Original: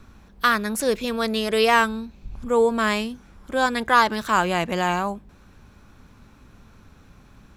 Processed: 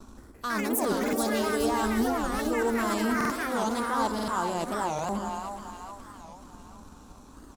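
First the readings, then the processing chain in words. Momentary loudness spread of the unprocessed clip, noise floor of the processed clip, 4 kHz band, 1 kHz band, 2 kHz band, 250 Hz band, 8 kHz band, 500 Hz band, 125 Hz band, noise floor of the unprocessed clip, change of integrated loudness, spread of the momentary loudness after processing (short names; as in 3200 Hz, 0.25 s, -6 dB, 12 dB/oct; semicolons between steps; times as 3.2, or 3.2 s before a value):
12 LU, -50 dBFS, -9.5 dB, -6.5 dB, -9.5 dB, -1.0 dB, -0.5 dB, -6.0 dB, -5.0 dB, -52 dBFS, -6.5 dB, 16 LU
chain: gate with hold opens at -44 dBFS; sample leveller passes 1; reverse; compressor 6:1, threshold -31 dBFS, peak gain reduction 19.5 dB; reverse; graphic EQ 125/250/1000/2000/8000 Hz -8/+7/+7/-12/+10 dB; echo 0.436 s -13.5 dB; echoes that change speed 0.171 s, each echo +5 st, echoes 2; on a send: split-band echo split 670 Hz, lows 0.108 s, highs 0.424 s, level -6 dB; on the sum: stuck buffer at 0.99/3.16/4.14/4.95, samples 2048, times 2; record warp 45 rpm, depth 250 cents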